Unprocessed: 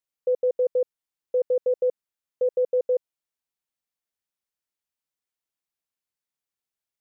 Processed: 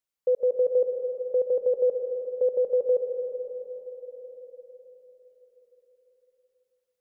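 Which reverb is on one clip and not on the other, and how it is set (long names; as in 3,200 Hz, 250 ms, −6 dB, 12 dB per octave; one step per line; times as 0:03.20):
comb and all-pass reverb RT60 4.8 s, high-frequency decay 0.4×, pre-delay 90 ms, DRR 5.5 dB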